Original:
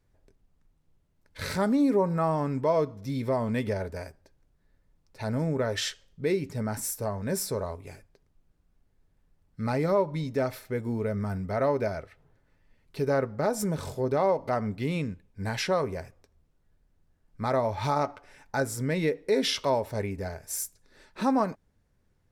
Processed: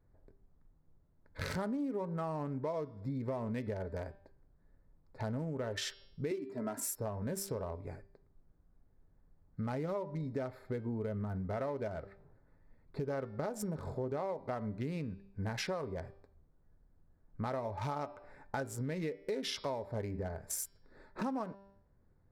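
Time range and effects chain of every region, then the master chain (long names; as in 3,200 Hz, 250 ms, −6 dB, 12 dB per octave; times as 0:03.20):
0:06.31–0:06.96: high-pass filter 170 Hz 24 dB per octave + comb filter 3 ms, depth 83%
whole clip: adaptive Wiener filter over 15 samples; hum removal 197 Hz, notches 28; downward compressor 6 to 1, threshold −36 dBFS; level +1 dB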